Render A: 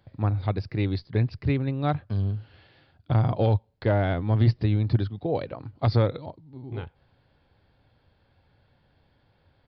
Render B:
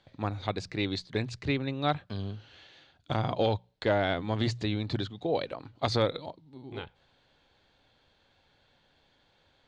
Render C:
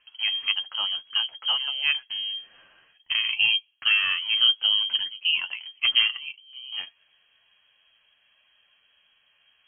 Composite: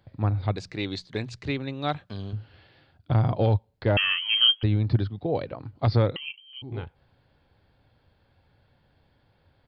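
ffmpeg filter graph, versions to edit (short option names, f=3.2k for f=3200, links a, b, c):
-filter_complex "[2:a]asplit=2[a][b];[0:a]asplit=4[c][d][e][f];[c]atrim=end=0.562[g];[1:a]atrim=start=0.558:end=2.332[h];[d]atrim=start=2.328:end=3.972[i];[a]atrim=start=3.968:end=4.632[j];[e]atrim=start=4.628:end=6.162[k];[b]atrim=start=6.158:end=6.622[l];[f]atrim=start=6.618[m];[g][h]acrossfade=d=0.004:c1=hsin:c2=hsin[n];[n][i]acrossfade=d=0.004:c1=hsin:c2=hsin[o];[o][j]acrossfade=d=0.004:c1=hsin:c2=hsin[p];[p][k]acrossfade=d=0.004:c1=hsin:c2=hsin[q];[q][l]acrossfade=d=0.004:c1=hsin:c2=hsin[r];[r][m]acrossfade=d=0.004:c1=hsin:c2=hsin"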